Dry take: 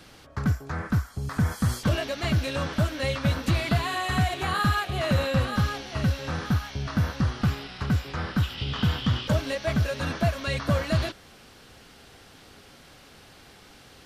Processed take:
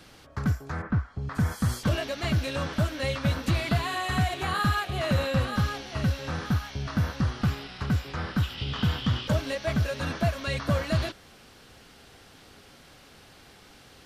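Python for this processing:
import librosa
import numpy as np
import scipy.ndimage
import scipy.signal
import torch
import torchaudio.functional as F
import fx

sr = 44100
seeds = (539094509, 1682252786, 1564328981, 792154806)

y = fx.lowpass(x, sr, hz=fx.line((0.81, 1800.0), (1.34, 3300.0)), slope=12, at=(0.81, 1.34), fade=0.02)
y = y * 10.0 ** (-1.5 / 20.0)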